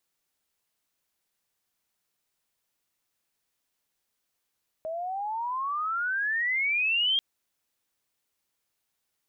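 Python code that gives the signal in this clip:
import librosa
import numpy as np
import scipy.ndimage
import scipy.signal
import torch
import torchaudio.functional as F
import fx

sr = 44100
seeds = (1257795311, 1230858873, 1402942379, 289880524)

y = fx.riser_tone(sr, length_s=2.34, level_db=-21.5, wave='sine', hz=627.0, rise_st=28.5, swell_db=9.0)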